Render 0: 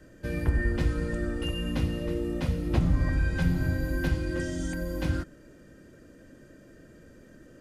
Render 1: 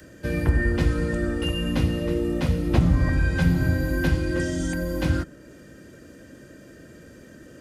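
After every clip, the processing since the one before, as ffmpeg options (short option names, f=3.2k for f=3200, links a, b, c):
-filter_complex "[0:a]highpass=49,acrossover=split=250|1900[a][b][c];[c]acompressor=mode=upward:threshold=-59dB:ratio=2.5[d];[a][b][d]amix=inputs=3:normalize=0,volume=6dB"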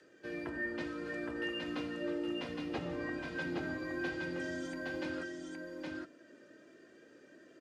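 -af "flanger=delay=2.3:depth=1.1:regen=41:speed=0.7:shape=triangular,highpass=290,lowpass=5.1k,aecho=1:1:817:0.708,volume=-7.5dB"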